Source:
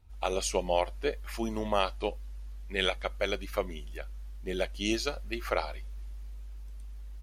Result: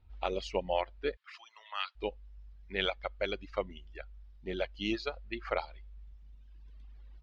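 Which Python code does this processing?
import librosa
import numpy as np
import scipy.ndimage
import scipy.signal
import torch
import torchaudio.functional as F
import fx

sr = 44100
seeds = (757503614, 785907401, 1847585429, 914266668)

y = scipy.signal.sosfilt(scipy.signal.butter(4, 4200.0, 'lowpass', fs=sr, output='sos'), x)
y = fx.dereverb_blind(y, sr, rt60_s=1.5)
y = fx.highpass(y, sr, hz=1200.0, slope=24, at=(1.15, 1.95), fade=0.02)
y = y * 10.0 ** (-2.5 / 20.0)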